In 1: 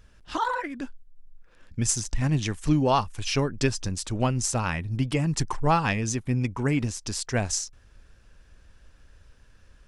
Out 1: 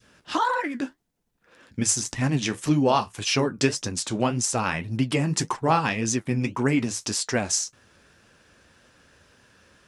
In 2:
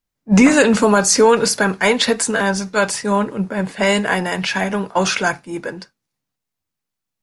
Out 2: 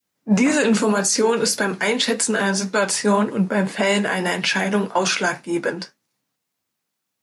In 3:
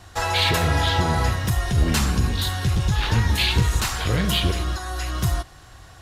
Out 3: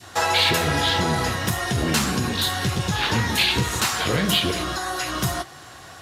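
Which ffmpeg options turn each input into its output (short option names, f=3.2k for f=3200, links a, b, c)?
-filter_complex "[0:a]highpass=170,adynamicequalizer=threshold=0.0355:dfrequency=910:dqfactor=0.71:tfrequency=910:tqfactor=0.71:attack=5:release=100:ratio=0.375:range=3:mode=cutabove:tftype=bell,asplit=2[a][b];[b]acompressor=threshold=-33dB:ratio=6,volume=-2.5dB[c];[a][c]amix=inputs=2:normalize=0,alimiter=limit=-11dB:level=0:latency=1:release=134,flanger=delay=7.9:depth=6.8:regen=-54:speed=1.8:shape=sinusoidal,volume=6dB"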